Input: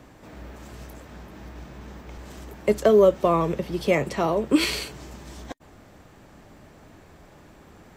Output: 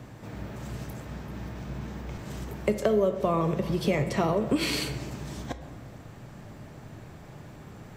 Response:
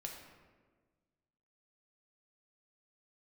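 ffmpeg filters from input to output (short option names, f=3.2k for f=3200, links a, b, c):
-filter_complex "[0:a]equalizer=f=130:t=o:w=0.75:g=11,acompressor=threshold=-23dB:ratio=5,asplit=2[a][b];[1:a]atrim=start_sample=2205[c];[b][c]afir=irnorm=-1:irlink=0,volume=1.5dB[d];[a][d]amix=inputs=2:normalize=0,volume=-3.5dB"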